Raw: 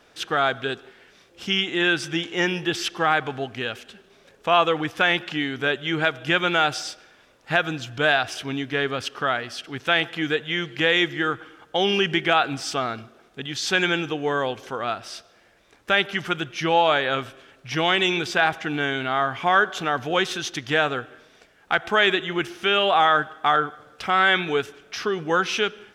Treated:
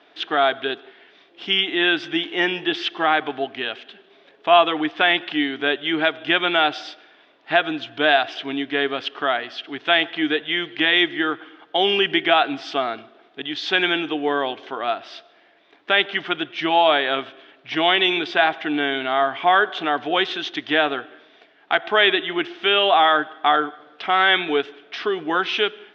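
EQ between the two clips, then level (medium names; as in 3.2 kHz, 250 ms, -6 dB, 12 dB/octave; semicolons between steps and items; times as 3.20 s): cabinet simulation 210–3700 Hz, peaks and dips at 300 Hz +10 dB, 420 Hz +5 dB, 690 Hz +9 dB, 990 Hz +4 dB, 1.9 kHz +3 dB, 3.4 kHz +4 dB; treble shelf 2.1 kHz +9 dB; band-stop 500 Hz, Q 12; -4.0 dB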